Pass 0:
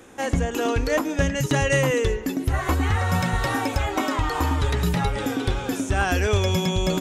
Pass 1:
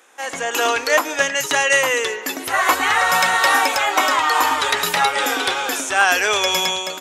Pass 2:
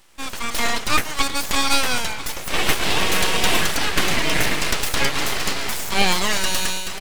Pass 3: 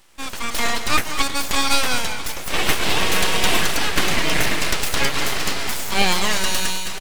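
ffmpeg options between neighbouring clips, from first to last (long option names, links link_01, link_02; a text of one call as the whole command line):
ffmpeg -i in.wav -af "highpass=800,dynaudnorm=framelen=110:gausssize=7:maxgain=14dB" out.wav
ffmpeg -i in.wav -af "aecho=1:1:995:0.188,aeval=exprs='abs(val(0))':channel_layout=same" out.wav
ffmpeg -i in.wav -af "aecho=1:1:202:0.251" out.wav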